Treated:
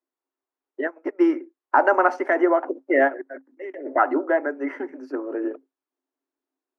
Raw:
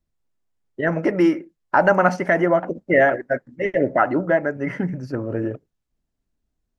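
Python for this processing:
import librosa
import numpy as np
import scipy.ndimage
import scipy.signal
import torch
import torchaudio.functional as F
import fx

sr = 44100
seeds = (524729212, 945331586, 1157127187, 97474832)

y = fx.high_shelf(x, sr, hz=2900.0, db=-9.5)
y = fx.level_steps(y, sr, step_db=16, at=(3.07, 3.85), fade=0.02)
y = scipy.signal.sosfilt(scipy.signal.cheby1(6, 6, 260.0, 'highpass', fs=sr, output='sos'), y)
y = fx.upward_expand(y, sr, threshold_db=-31.0, expansion=2.5, at=(0.86, 1.28), fade=0.02)
y = y * 10.0 ** (2.5 / 20.0)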